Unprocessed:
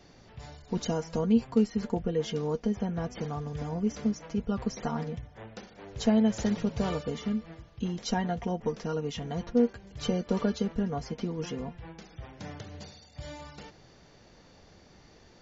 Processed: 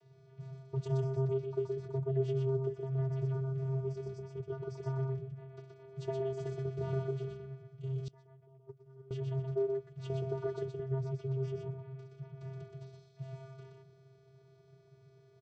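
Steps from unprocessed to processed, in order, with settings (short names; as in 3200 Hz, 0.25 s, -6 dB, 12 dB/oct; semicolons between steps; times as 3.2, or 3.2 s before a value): vocoder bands 16, square 133 Hz; echo 0.123 s -3.5 dB; 8.08–9.11 gate -23 dBFS, range -23 dB; gain -5 dB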